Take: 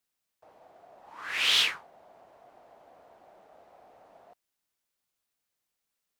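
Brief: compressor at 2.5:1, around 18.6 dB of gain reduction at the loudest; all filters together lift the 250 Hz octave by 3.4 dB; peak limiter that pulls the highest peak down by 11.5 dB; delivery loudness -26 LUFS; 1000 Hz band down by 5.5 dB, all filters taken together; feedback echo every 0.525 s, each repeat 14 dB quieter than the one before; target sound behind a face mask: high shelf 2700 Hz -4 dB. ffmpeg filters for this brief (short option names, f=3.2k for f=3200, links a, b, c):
-af "equalizer=f=250:t=o:g=5,equalizer=f=1k:t=o:g=-7,acompressor=threshold=-50dB:ratio=2.5,alimiter=level_in=16dB:limit=-24dB:level=0:latency=1,volume=-16dB,highshelf=f=2.7k:g=-4,aecho=1:1:525|1050:0.2|0.0399,volume=29.5dB"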